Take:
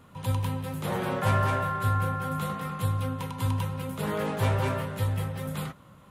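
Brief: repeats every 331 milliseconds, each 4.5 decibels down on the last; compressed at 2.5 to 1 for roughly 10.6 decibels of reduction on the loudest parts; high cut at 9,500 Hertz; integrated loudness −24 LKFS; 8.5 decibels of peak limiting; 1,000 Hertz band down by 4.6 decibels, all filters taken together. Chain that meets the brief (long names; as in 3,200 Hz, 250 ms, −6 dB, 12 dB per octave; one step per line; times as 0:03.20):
low-pass filter 9,500 Hz
parametric band 1,000 Hz −6 dB
downward compressor 2.5 to 1, threshold −38 dBFS
brickwall limiter −33 dBFS
repeating echo 331 ms, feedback 60%, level −4.5 dB
level +16 dB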